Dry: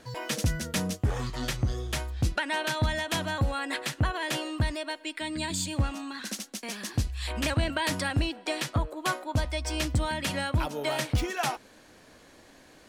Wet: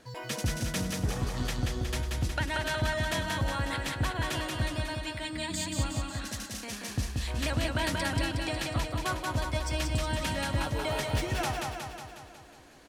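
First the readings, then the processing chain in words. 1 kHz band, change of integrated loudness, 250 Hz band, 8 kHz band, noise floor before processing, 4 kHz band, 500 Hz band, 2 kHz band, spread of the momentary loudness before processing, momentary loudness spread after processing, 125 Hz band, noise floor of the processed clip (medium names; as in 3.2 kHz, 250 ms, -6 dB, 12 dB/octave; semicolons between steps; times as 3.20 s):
-1.5 dB, -1.5 dB, -2.0 dB, -1.5 dB, -55 dBFS, -1.5 dB, -1.0 dB, -1.5 dB, 6 LU, 7 LU, -1.5 dB, -49 dBFS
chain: feedback delay 182 ms, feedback 60%, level -3 dB; trim -4 dB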